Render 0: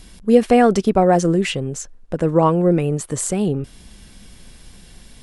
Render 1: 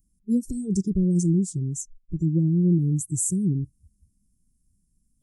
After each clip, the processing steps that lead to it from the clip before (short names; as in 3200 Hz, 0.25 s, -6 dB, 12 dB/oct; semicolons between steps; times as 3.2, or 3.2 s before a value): inverse Chebyshev band-stop 730–2800 Hz, stop band 60 dB; spectral noise reduction 25 dB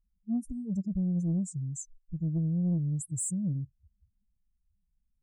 spectral contrast raised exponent 1.9; soft clip -15 dBFS, distortion -23 dB; gain -6.5 dB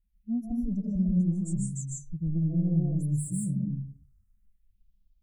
phaser stages 4, 0.45 Hz, lowest notch 520–1600 Hz; digital reverb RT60 0.46 s, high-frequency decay 0.5×, pre-delay 0.11 s, DRR -3.5 dB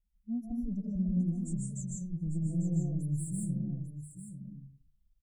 echo 0.847 s -10.5 dB; gain -5 dB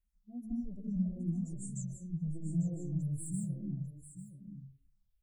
endless phaser -2.5 Hz